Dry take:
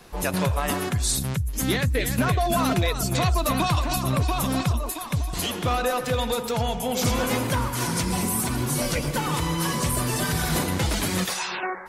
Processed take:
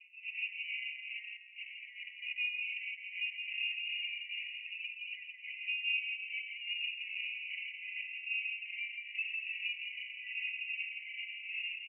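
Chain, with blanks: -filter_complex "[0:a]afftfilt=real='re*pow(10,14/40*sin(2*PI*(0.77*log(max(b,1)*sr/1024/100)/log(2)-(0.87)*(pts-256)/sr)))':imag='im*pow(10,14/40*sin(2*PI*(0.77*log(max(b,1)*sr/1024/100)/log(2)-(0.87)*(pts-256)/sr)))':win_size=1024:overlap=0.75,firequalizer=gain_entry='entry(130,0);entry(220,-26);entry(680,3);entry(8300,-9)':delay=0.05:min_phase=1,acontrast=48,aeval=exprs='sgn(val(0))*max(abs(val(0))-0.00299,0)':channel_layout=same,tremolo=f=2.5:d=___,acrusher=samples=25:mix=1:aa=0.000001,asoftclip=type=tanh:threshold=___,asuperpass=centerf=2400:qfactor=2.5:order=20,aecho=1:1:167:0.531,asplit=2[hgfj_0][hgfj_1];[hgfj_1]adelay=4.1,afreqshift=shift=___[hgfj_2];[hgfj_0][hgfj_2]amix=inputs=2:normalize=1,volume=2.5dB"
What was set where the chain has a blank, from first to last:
0.85, -22dB, 0.4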